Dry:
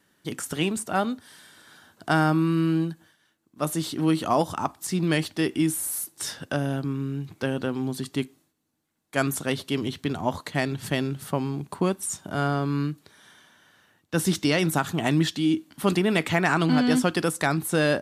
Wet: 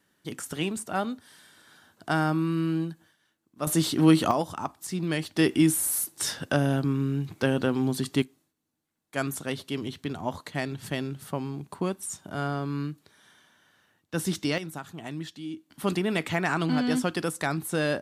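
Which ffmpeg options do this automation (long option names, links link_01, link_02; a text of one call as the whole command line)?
ffmpeg -i in.wav -af "asetnsamples=nb_out_samples=441:pad=0,asendcmd='3.67 volume volume 4dB;4.31 volume volume -5dB;5.36 volume volume 2.5dB;8.22 volume volume -5dB;14.58 volume volume -14dB;15.7 volume volume -4.5dB',volume=-4dB" out.wav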